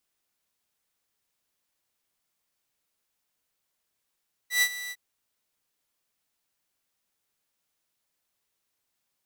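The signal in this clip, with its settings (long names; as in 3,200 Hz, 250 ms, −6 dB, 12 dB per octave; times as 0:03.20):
note with an ADSR envelope saw 1,970 Hz, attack 119 ms, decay 63 ms, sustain −15.5 dB, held 0.41 s, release 46 ms −16 dBFS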